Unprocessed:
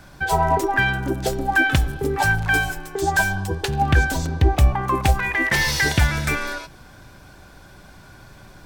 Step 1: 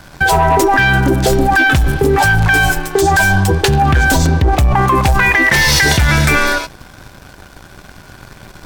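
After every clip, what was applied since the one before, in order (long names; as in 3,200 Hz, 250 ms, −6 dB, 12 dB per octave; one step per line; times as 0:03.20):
leveller curve on the samples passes 2
in parallel at +2 dB: compressor whose output falls as the input rises −17 dBFS, ratio −1
on the sum: level −2.5 dB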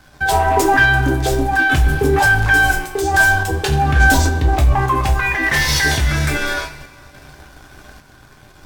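coupled-rooms reverb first 0.3 s, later 2.7 s, from −22 dB, DRR 1 dB
sample-and-hold tremolo
level −4.5 dB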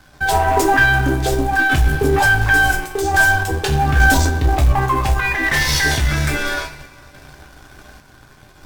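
gain on one half-wave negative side −3 dB
in parallel at −4.5 dB: floating-point word with a short mantissa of 2 bits
on the sum: level −3.5 dB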